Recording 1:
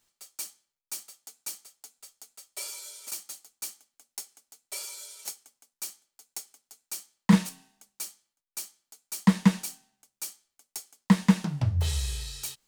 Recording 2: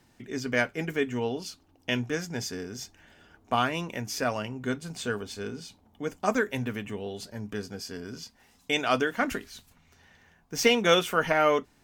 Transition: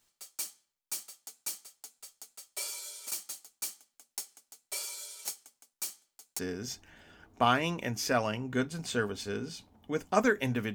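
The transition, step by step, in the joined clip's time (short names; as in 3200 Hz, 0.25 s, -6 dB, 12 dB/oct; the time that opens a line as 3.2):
recording 1
6.39 switch to recording 2 from 2.5 s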